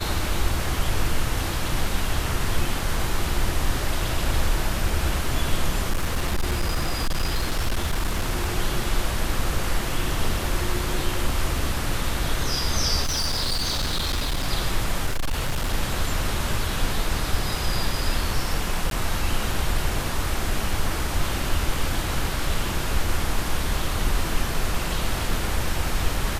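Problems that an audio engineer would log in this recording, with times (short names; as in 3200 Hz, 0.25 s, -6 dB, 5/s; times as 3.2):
5.9–8.51 clipped -18.5 dBFS
13.03–14.47 clipped -20.5 dBFS
15.06–15.74 clipped -20 dBFS
18.9–18.91 gap 12 ms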